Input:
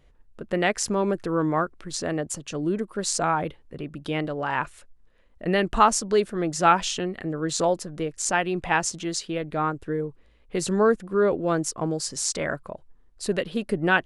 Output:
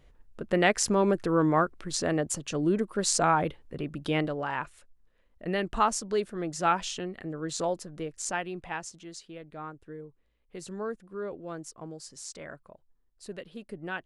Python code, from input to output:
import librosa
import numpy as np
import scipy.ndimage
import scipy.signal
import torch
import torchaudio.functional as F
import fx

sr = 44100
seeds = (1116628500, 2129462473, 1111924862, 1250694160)

y = fx.gain(x, sr, db=fx.line((4.19, 0.0), (4.6, -7.0), (8.24, -7.0), (8.92, -15.0)))